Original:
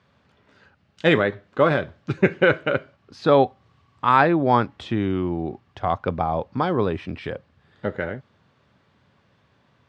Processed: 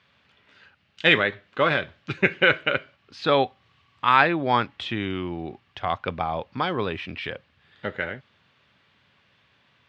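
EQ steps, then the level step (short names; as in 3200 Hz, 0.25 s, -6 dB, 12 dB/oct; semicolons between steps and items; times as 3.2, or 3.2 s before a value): bell 2800 Hz +14 dB 2 oct; -6.5 dB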